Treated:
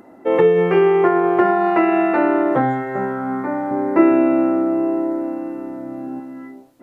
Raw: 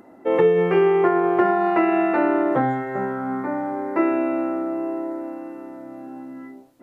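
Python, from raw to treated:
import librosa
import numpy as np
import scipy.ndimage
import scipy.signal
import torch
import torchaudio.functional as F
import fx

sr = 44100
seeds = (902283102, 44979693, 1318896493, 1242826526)

y = fx.low_shelf(x, sr, hz=350.0, db=9.0, at=(3.71, 6.2))
y = y * 10.0 ** (3.0 / 20.0)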